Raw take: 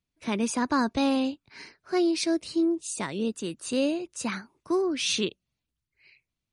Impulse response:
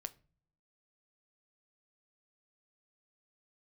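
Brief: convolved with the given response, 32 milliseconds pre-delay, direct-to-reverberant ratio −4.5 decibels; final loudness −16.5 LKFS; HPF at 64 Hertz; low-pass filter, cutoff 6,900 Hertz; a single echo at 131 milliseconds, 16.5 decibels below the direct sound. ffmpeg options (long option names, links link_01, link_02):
-filter_complex "[0:a]highpass=64,lowpass=6900,aecho=1:1:131:0.15,asplit=2[link_01][link_02];[1:a]atrim=start_sample=2205,adelay=32[link_03];[link_02][link_03]afir=irnorm=-1:irlink=0,volume=8dB[link_04];[link_01][link_04]amix=inputs=2:normalize=0,volume=6dB"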